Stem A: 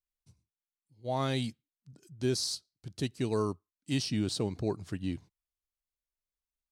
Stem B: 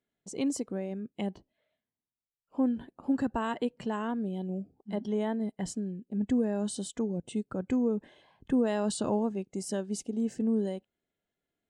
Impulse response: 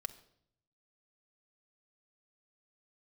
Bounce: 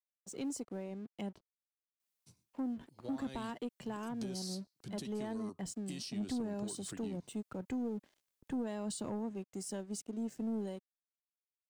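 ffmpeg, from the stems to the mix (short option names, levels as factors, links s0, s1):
-filter_complex "[0:a]highpass=170,alimiter=level_in=1.41:limit=0.0631:level=0:latency=1:release=79,volume=0.708,acompressor=threshold=0.00447:ratio=4,adelay=2000,volume=1.33[s0];[1:a]aeval=exprs='sgn(val(0))*max(abs(val(0))-0.00178,0)':c=same,volume=0.501[s1];[s0][s1]amix=inputs=2:normalize=0,highshelf=f=5100:g=6,acrossover=split=270[s2][s3];[s3]acompressor=threshold=0.0112:ratio=3[s4];[s2][s4]amix=inputs=2:normalize=0,asoftclip=type=tanh:threshold=0.0282"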